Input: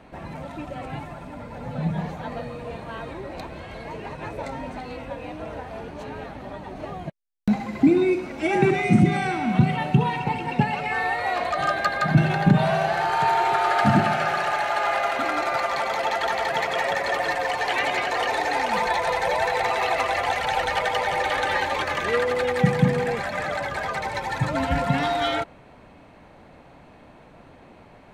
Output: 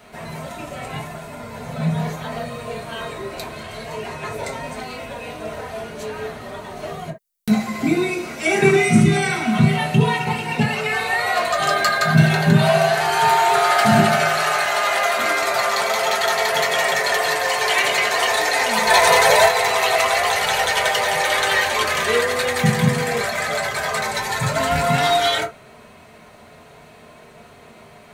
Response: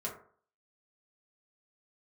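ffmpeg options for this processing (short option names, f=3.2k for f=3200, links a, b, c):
-filter_complex "[0:a]asplit=3[a][b][c];[a]afade=t=out:st=18.87:d=0.02[d];[b]acontrast=42,afade=t=in:st=18.87:d=0.02,afade=t=out:st=19.45:d=0.02[e];[c]afade=t=in:st=19.45:d=0.02[f];[d][e][f]amix=inputs=3:normalize=0,crystalizer=i=7.5:c=0[g];[1:a]atrim=start_sample=2205,afade=t=out:st=0.13:d=0.01,atrim=end_sample=6174[h];[g][h]afir=irnorm=-1:irlink=0,volume=-1dB"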